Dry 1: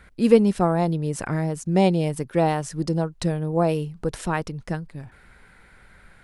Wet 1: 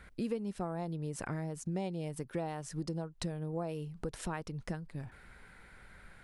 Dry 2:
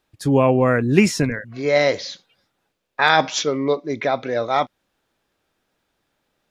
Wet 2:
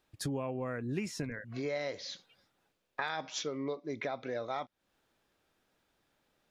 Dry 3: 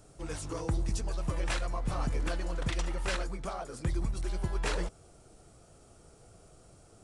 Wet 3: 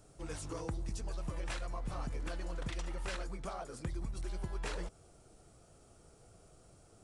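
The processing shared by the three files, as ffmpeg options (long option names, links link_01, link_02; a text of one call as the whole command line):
ffmpeg -i in.wav -af "acompressor=threshold=-31dB:ratio=5,volume=-4dB" out.wav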